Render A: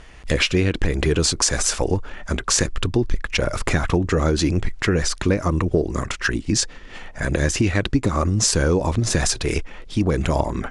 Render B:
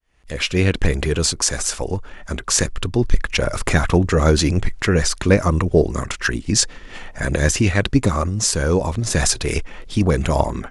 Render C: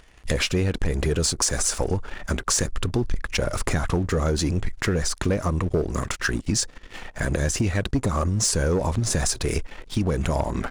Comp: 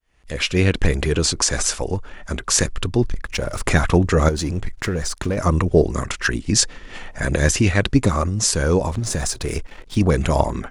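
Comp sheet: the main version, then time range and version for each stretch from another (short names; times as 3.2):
B
1.15–1.72 from A
3.08–3.66 from C
4.29–5.37 from C
8.88–9.96 from C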